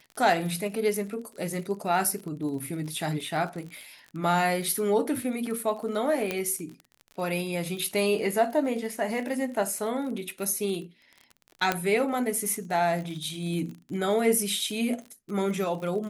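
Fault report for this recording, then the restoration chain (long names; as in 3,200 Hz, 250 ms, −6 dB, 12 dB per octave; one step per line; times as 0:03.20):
surface crackle 36 per second −35 dBFS
0:06.31: click −13 dBFS
0:11.72: click −9 dBFS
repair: click removal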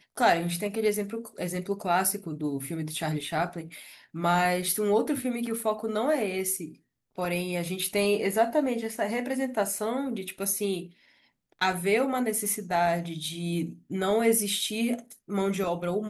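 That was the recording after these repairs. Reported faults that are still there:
0:06.31: click
0:11.72: click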